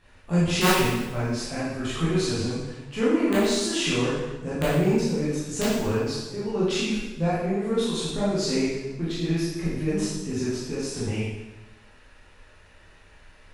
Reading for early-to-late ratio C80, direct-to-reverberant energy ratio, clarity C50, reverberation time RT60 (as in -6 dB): 2.0 dB, -10.5 dB, -2.0 dB, 1.1 s